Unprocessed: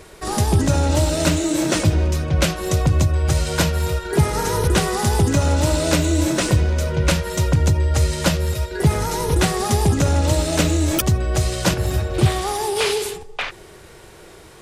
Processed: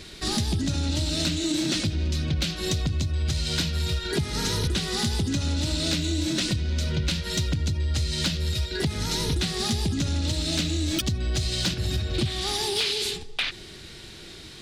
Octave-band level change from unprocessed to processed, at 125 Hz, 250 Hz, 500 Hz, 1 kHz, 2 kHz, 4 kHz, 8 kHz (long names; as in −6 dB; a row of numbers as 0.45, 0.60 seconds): −8.5, −7.0, −12.0, −13.5, −7.0, +1.0, −6.5 decibels